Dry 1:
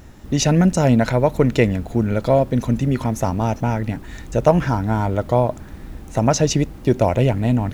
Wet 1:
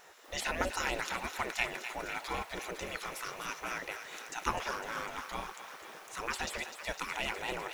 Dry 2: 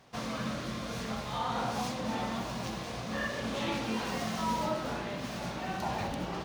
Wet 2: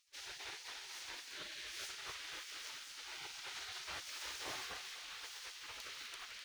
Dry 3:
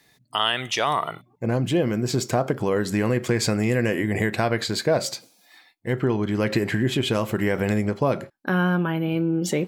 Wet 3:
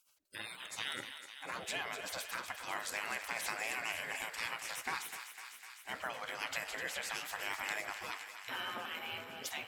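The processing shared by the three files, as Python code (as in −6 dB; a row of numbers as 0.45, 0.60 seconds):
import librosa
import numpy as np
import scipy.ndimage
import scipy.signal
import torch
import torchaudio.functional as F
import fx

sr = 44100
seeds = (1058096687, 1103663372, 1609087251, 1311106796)

y = fx.high_shelf(x, sr, hz=5400.0, db=-3.0)
y = fx.spec_gate(y, sr, threshold_db=-20, keep='weak')
y = fx.low_shelf(y, sr, hz=330.0, db=-3.5)
y = fx.echo_thinned(y, sr, ms=252, feedback_pct=79, hz=720.0, wet_db=-9.5)
y = y * 10.0 ** (-2.0 / 20.0)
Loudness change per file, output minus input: −18.0, −11.0, −16.5 LU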